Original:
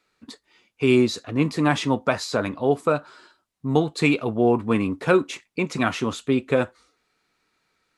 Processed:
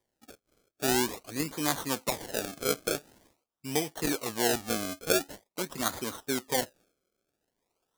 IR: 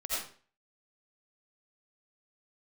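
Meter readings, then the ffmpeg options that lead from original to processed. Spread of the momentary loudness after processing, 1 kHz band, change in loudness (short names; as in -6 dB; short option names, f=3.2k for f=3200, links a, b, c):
8 LU, -7.5 dB, -8.0 dB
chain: -af "acrusher=samples=32:mix=1:aa=0.000001:lfo=1:lforange=32:lforate=0.46,bass=f=250:g=-7,treble=f=4k:g=9,volume=-9dB"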